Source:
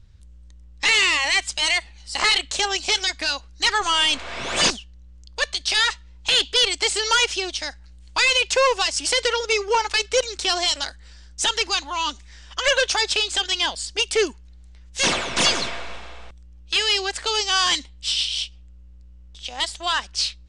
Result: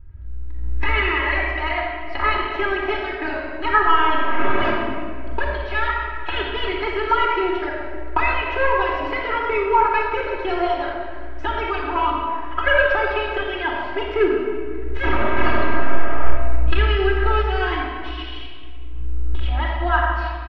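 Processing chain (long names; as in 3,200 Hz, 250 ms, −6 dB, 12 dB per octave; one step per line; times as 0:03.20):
camcorder AGC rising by 23 dB per second
low-pass filter 1,900 Hz 24 dB per octave
notch filter 510 Hz, Q 15
comb filter 3.1 ms, depth 95%
in parallel at −1.5 dB: output level in coarse steps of 9 dB
on the sum: rectangular room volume 3,700 cubic metres, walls mixed, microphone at 4 metres
level −6.5 dB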